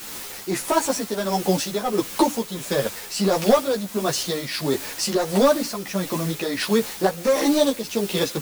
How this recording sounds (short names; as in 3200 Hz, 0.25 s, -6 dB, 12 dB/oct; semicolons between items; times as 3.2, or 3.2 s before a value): a quantiser's noise floor 6-bit, dither triangular; tremolo triangle 1.5 Hz, depth 55%; a shimmering, thickened sound